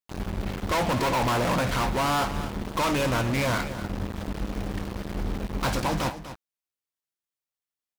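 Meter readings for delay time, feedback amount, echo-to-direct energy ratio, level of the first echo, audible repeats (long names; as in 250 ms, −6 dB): 246 ms, repeats not evenly spaced, −12.5 dB, −12.5 dB, 1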